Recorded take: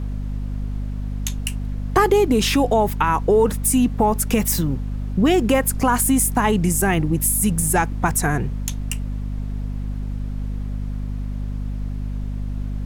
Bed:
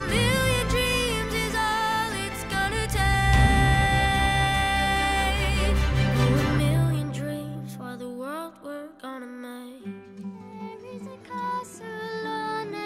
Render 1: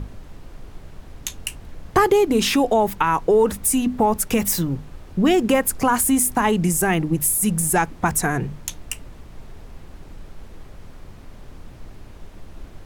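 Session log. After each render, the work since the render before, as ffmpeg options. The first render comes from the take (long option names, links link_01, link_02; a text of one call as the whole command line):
ffmpeg -i in.wav -af "bandreject=frequency=50:width_type=h:width=6,bandreject=frequency=100:width_type=h:width=6,bandreject=frequency=150:width_type=h:width=6,bandreject=frequency=200:width_type=h:width=6,bandreject=frequency=250:width_type=h:width=6" out.wav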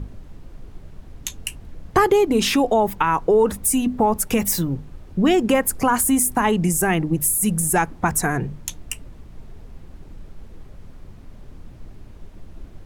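ffmpeg -i in.wav -af "afftdn=noise_reduction=6:noise_floor=-42" out.wav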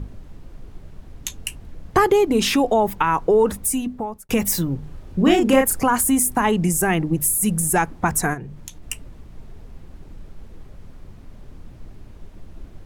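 ffmpeg -i in.wav -filter_complex "[0:a]asettb=1/sr,asplit=3[link_01][link_02][link_03];[link_01]atrim=end=4.794[link_04];[link_02]atrim=start=4.79:end=5.81,asetpts=PTS-STARTPTS,afade=type=in:duration=0.004:curve=qsin,afade=type=out:start_time=1.016:duration=0.004:curve=qsin,asplit=2[link_05][link_06];[link_06]adelay=34,volume=-3dB[link_07];[link_05][link_07]amix=inputs=2:normalize=0,atrim=end_sample=44982[link_08];[link_03]atrim=start=5.806[link_09];[link_04][link_08]acrossfade=duration=0.004:curve1=hsin:curve2=qsin[link_10];[link_10][link_09]acrossfade=duration=0.004:curve1=qsin:curve2=hsin,asplit=3[link_11][link_12][link_13];[link_11]afade=type=out:start_time=8.33:duration=0.02[link_14];[link_12]acompressor=threshold=-34dB:ratio=2.5:attack=3.2:release=140:knee=1:detection=peak,afade=type=in:start_time=8.33:duration=0.02,afade=type=out:start_time=8.82:duration=0.02[link_15];[link_13]afade=type=in:start_time=8.82:duration=0.02[link_16];[link_14][link_15][link_16]amix=inputs=3:normalize=0,asplit=2[link_17][link_18];[link_17]atrim=end=4.29,asetpts=PTS-STARTPTS,afade=type=out:start_time=3.51:duration=0.78[link_19];[link_18]atrim=start=4.29,asetpts=PTS-STARTPTS,afade=type=in:duration=0.004:curve=hsin[link_20];[link_19][link_20]concat=n=2:v=0:a=1" out.wav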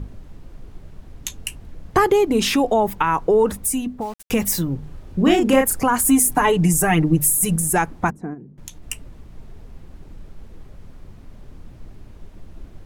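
ffmpeg -i in.wav -filter_complex "[0:a]asplit=3[link_01][link_02][link_03];[link_01]afade=type=out:start_time=4:duration=0.02[link_04];[link_02]aeval=exprs='val(0)*gte(abs(val(0)),0.0133)':channel_layout=same,afade=type=in:start_time=4:duration=0.02,afade=type=out:start_time=4.44:duration=0.02[link_05];[link_03]afade=type=in:start_time=4.44:duration=0.02[link_06];[link_04][link_05][link_06]amix=inputs=3:normalize=0,asettb=1/sr,asplit=3[link_07][link_08][link_09];[link_07]atrim=end=6.044[link_10];[link_08]atrim=start=6.04:end=7.56,asetpts=PTS-STARTPTS,afade=type=in:duration=0.004:curve=qsin,afade=type=out:start_time=1.516:duration=0.004:curve=qsin,aecho=1:1:6.7:0.89,atrim=end_sample=67032[link_11];[link_09]atrim=start=7.556[link_12];[link_10][link_11]acrossfade=duration=0.004:curve1=hsin:curve2=qsin[link_13];[link_13][link_12]acrossfade=duration=0.004:curve1=qsin:curve2=hsin,asettb=1/sr,asplit=3[link_14][link_15][link_16];[link_14]atrim=end=8.104[link_17];[link_15]atrim=start=8.1:end=8.58,asetpts=PTS-STARTPTS,afade=type=in:duration=0.004:curve=qsin,afade=type=out:start_time=0.476:duration=0.004:curve=qsin,bandpass=frequency=260:width_type=q:width=2[link_18];[link_16]atrim=start=8.576[link_19];[link_17][link_18]acrossfade=duration=0.004:curve1=hsin:curve2=qsin[link_20];[link_20][link_19]acrossfade=duration=0.004:curve1=qsin:curve2=hsin" out.wav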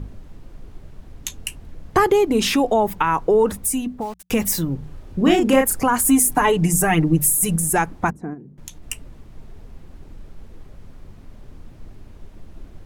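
ffmpeg -i in.wav -af "bandreject=frequency=60:width_type=h:width=6,bandreject=frequency=120:width_type=h:width=6,bandreject=frequency=180:width_type=h:width=6" out.wav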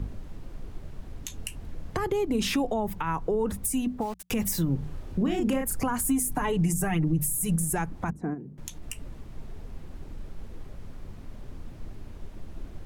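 ffmpeg -i in.wav -filter_complex "[0:a]acrossover=split=190[link_01][link_02];[link_02]acompressor=threshold=-27dB:ratio=4[link_03];[link_01][link_03]amix=inputs=2:normalize=0,alimiter=limit=-17.5dB:level=0:latency=1:release=80" out.wav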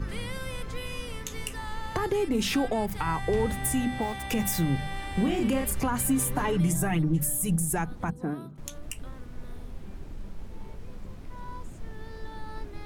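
ffmpeg -i in.wav -i bed.wav -filter_complex "[1:a]volume=-14.5dB[link_01];[0:a][link_01]amix=inputs=2:normalize=0" out.wav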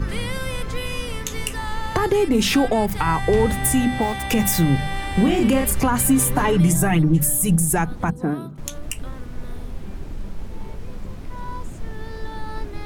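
ffmpeg -i in.wav -af "volume=8.5dB" out.wav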